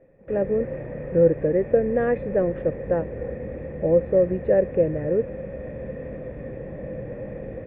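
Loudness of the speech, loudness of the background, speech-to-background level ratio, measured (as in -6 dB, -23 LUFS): -23.0 LUFS, -34.5 LUFS, 11.5 dB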